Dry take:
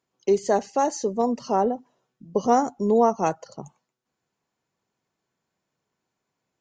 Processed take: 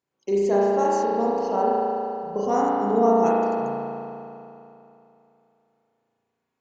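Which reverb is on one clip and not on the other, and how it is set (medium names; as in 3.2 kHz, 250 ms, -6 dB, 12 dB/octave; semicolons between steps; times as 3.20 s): spring tank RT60 2.9 s, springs 35 ms, chirp 40 ms, DRR -7 dB; trim -7 dB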